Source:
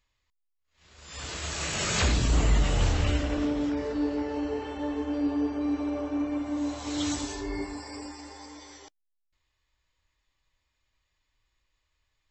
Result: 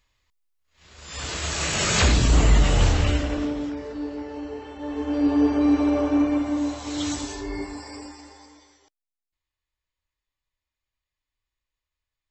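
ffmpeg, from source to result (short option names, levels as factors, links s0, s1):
-af "volume=8.41,afade=t=out:st=2.81:d=0.99:silence=0.354813,afade=t=in:st=4.79:d=0.72:silence=0.237137,afade=t=out:st=6.14:d=0.68:silence=0.421697,afade=t=out:st=7.88:d=0.89:silence=0.223872"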